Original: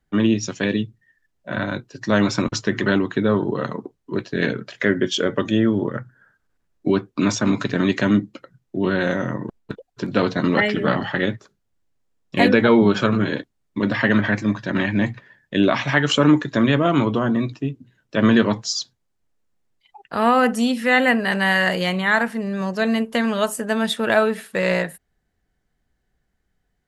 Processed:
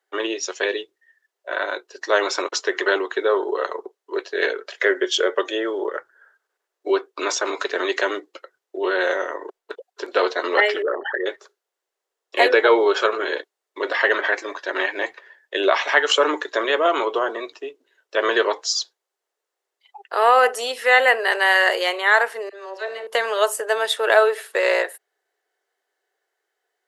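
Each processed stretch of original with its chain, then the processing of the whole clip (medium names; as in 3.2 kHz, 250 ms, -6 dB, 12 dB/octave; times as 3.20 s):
10.82–11.26 s: resonances exaggerated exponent 3 + compression 2:1, threshold -23 dBFS
22.49–23.07 s: distance through air 61 m + feedback comb 64 Hz, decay 1.1 s, mix 70% + phase dispersion lows, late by 41 ms, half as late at 1.3 kHz
whole clip: elliptic high-pass 390 Hz, stop band 50 dB; band-stop 2.4 kHz, Q 23; trim +3 dB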